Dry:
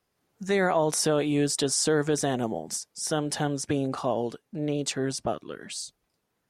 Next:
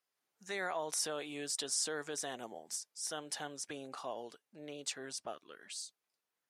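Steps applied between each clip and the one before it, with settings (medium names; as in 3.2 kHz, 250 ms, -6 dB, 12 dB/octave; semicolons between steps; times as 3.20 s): high-pass 1.2 kHz 6 dB/octave; trim -8 dB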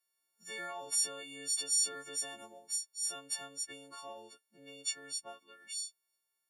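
partials quantised in pitch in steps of 4 st; trim -7.5 dB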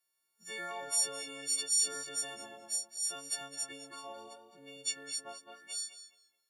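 tape echo 213 ms, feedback 33%, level -6.5 dB, low-pass 3 kHz; trim +1 dB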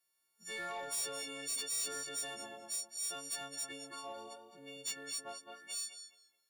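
saturation -35.5 dBFS, distortion -6 dB; trim +1 dB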